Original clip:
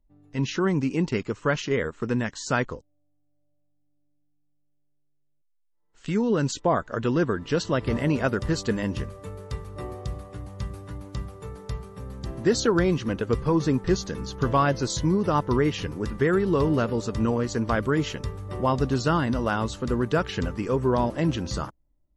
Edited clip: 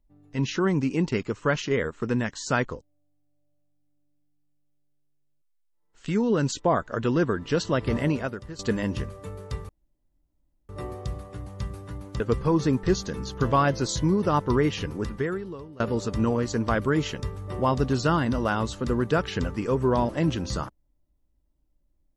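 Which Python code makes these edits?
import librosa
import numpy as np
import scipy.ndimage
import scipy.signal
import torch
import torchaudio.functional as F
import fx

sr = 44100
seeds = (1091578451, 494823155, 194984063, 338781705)

y = fx.edit(x, sr, fx.fade_out_to(start_s=8.06, length_s=0.53, curve='qua', floor_db=-15.0),
    fx.insert_room_tone(at_s=9.69, length_s=1.0),
    fx.cut(start_s=11.2, length_s=2.01),
    fx.fade_out_to(start_s=16.02, length_s=0.79, curve='qua', floor_db=-23.5), tone=tone)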